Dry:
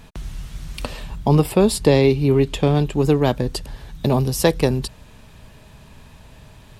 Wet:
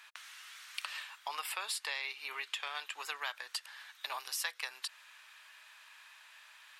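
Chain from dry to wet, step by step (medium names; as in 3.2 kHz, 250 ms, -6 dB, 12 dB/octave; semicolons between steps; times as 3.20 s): high-pass 1.4 kHz 24 dB/octave; treble shelf 2.6 kHz -12 dB; compression 4:1, threshold -39 dBFS, peak gain reduction 11 dB; trim +4 dB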